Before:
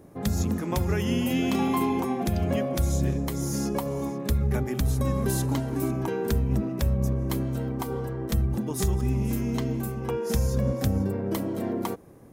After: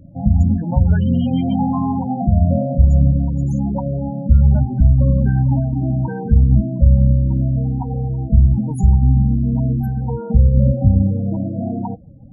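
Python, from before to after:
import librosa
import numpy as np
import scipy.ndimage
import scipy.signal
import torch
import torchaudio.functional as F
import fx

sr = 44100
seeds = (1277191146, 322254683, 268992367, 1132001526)

y = fx.low_shelf(x, sr, hz=420.0, db=7.5)
y = y + 0.79 * np.pad(y, (int(1.3 * sr / 1000.0), 0))[:len(y)]
y = fx.spec_topn(y, sr, count=16)
y = F.gain(torch.from_numpy(y), 2.0).numpy()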